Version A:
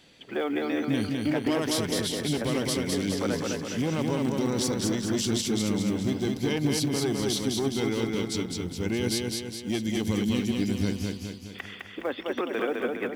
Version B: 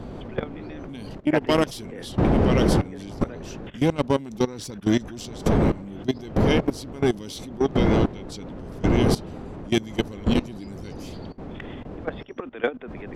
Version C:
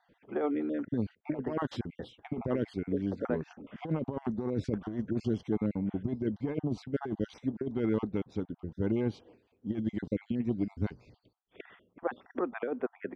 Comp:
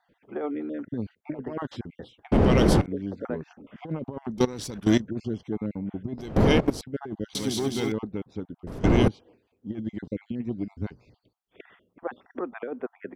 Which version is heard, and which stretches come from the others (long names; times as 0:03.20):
C
0:02.32–0:02.86: punch in from B
0:04.38–0:05.00: punch in from B
0:06.18–0:06.81: punch in from B
0:07.35–0:07.92: punch in from A
0:08.67–0:09.08: punch in from B